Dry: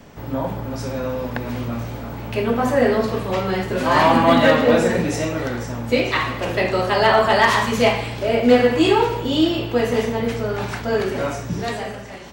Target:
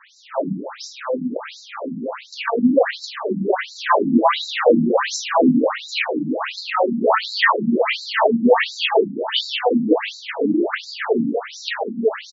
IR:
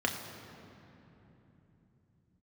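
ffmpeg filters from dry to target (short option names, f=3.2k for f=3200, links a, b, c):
-filter_complex "[0:a]asplit=2[a][b];[b]adelay=1115,lowpass=f=4.3k:p=1,volume=-4.5dB,asplit=2[c][d];[d]adelay=1115,lowpass=f=4.3k:p=1,volume=0.25,asplit=2[e][f];[f]adelay=1115,lowpass=f=4.3k:p=1,volume=0.25[g];[a][c][e][g]amix=inputs=4:normalize=0,alimiter=level_in=8dB:limit=-1dB:release=50:level=0:latency=1,afftfilt=real='re*between(b*sr/1024,210*pow(5400/210,0.5+0.5*sin(2*PI*1.4*pts/sr))/1.41,210*pow(5400/210,0.5+0.5*sin(2*PI*1.4*pts/sr))*1.41)':imag='im*between(b*sr/1024,210*pow(5400/210,0.5+0.5*sin(2*PI*1.4*pts/sr))/1.41,210*pow(5400/210,0.5+0.5*sin(2*PI*1.4*pts/sr))*1.41)':win_size=1024:overlap=0.75"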